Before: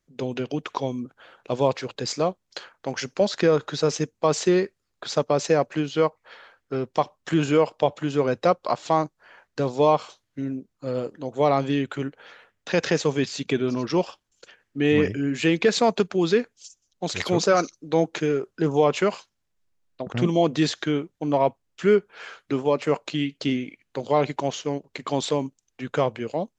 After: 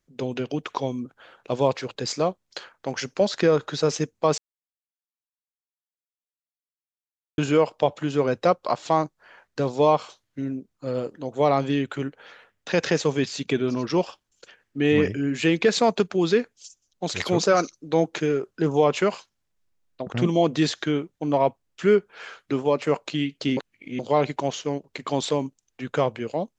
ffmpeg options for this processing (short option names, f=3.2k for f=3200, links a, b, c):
-filter_complex "[0:a]asplit=5[a][b][c][d][e];[a]atrim=end=4.38,asetpts=PTS-STARTPTS,afade=t=out:st=4.376:d=0.004:c=hsin[f];[b]atrim=start=4.38:end=7.38,asetpts=PTS-STARTPTS,volume=0[g];[c]atrim=start=7.38:end=23.572,asetpts=PTS-STARTPTS,afade=t=in:d=0.004:c=hsin[h];[d]atrim=start=23.568:end=23.992,asetpts=PTS-STARTPTS,areverse[i];[e]atrim=start=23.988[j];[f][g][h]concat=n=3:v=0:a=1[k];[k][i]acrossfade=d=0.004:c1=hsin:c2=hsin[l];[l][j]acrossfade=d=0.004:c1=hsin:c2=hsin"